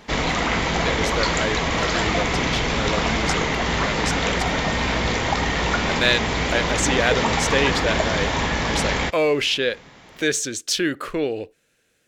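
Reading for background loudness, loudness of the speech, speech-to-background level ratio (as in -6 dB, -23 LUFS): -22.0 LUFS, -25.0 LUFS, -3.0 dB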